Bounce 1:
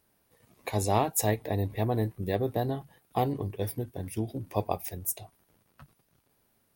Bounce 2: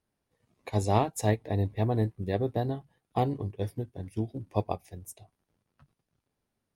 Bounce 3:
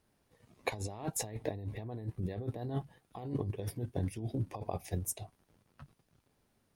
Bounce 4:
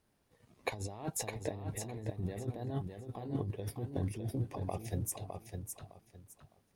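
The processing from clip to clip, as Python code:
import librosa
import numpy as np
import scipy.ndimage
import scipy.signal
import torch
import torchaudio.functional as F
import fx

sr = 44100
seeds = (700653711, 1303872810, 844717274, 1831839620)

y1 = scipy.signal.sosfilt(scipy.signal.butter(2, 8500.0, 'lowpass', fs=sr, output='sos'), x)
y1 = fx.low_shelf(y1, sr, hz=340.0, db=4.5)
y1 = fx.upward_expand(y1, sr, threshold_db=-43.0, expansion=1.5)
y2 = fx.over_compress(y1, sr, threshold_db=-38.0, ratio=-1.0)
y3 = fx.echo_feedback(y2, sr, ms=609, feedback_pct=23, wet_db=-6.0)
y3 = y3 * 10.0 ** (-1.5 / 20.0)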